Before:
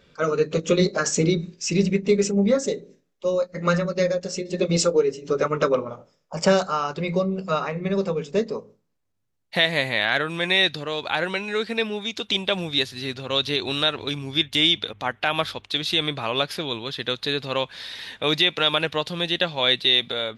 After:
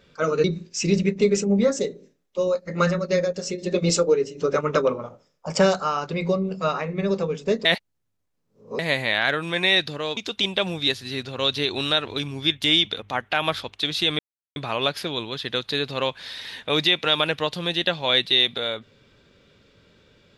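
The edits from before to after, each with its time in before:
0:00.44–0:01.31: remove
0:08.52–0:09.66: reverse
0:11.04–0:12.08: remove
0:16.10: splice in silence 0.37 s

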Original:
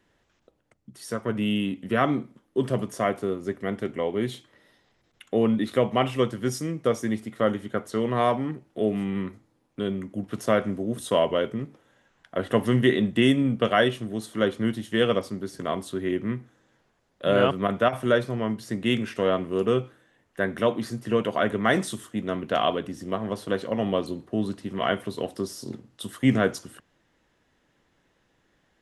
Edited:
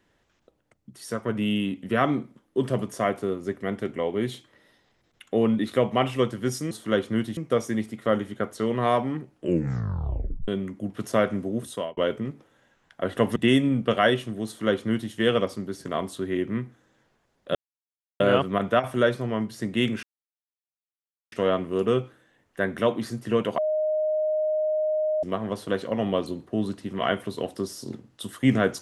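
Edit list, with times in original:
0:08.65: tape stop 1.17 s
0:10.91–0:11.31: fade out
0:12.70–0:13.10: remove
0:14.20–0:14.86: duplicate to 0:06.71
0:17.29: splice in silence 0.65 s
0:19.12: splice in silence 1.29 s
0:21.38–0:23.03: beep over 618 Hz −21.5 dBFS

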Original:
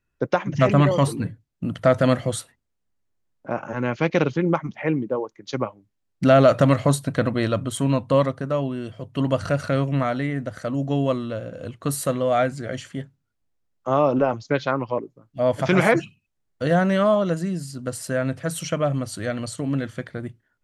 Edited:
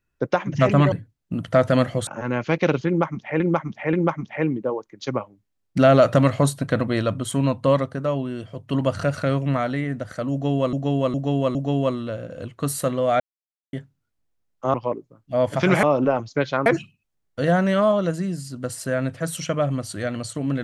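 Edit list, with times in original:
0:00.92–0:01.23: remove
0:02.38–0:03.59: remove
0:04.39–0:04.92: repeat, 3 plays
0:10.78–0:11.19: repeat, 4 plays
0:12.43–0:12.96: silence
0:13.97–0:14.80: move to 0:15.89

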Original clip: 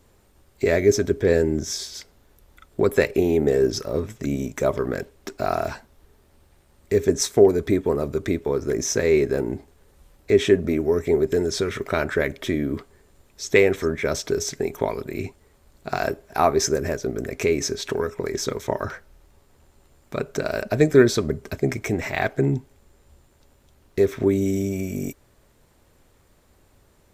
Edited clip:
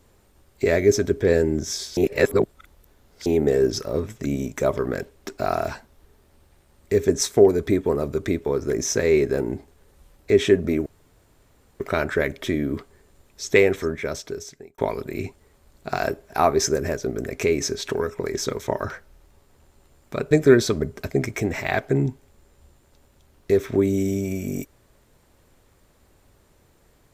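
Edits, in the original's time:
0:01.97–0:03.26: reverse
0:10.86–0:11.80: fill with room tone
0:13.64–0:14.78: fade out linear
0:20.31–0:20.79: remove

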